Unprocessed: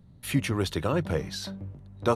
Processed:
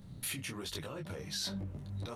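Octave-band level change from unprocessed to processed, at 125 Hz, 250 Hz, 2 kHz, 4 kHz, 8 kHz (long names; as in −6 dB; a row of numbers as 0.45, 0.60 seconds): −11.5, −13.5, −9.0, −3.0, −1.0 decibels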